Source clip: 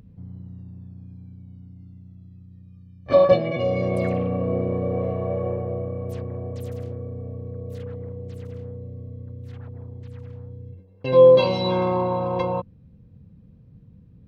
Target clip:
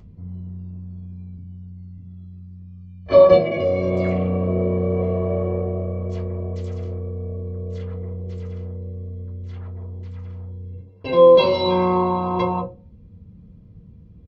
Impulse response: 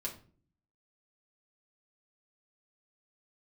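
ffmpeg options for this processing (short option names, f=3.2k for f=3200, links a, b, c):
-filter_complex "[0:a]asettb=1/sr,asplit=3[a][b][c];[a]atrim=end=1.374[d];[b]atrim=start=1.37:end=1.98,asetpts=PTS-STARTPTS,afade=t=in:d=0.004:c=qsin,afade=t=out:st=0.606:d=0.004:c=qsin,acrossover=split=210|3000[e][f][g];[f]acompressor=threshold=-56dB:ratio=6[h];[e][h][g]amix=inputs=3:normalize=0[i];[c]atrim=start=1.976[j];[d][i]acrossfade=d=0.004:c1=hsin:c2=qsin[k];[k][j]acrossfade=d=0.004:c1=qsin:c2=hsin[l];[1:a]atrim=start_sample=2205,asetrate=88200,aresample=44100[m];[l][m]afir=irnorm=-1:irlink=0,aresample=16000,aresample=44100,volume=8.5dB"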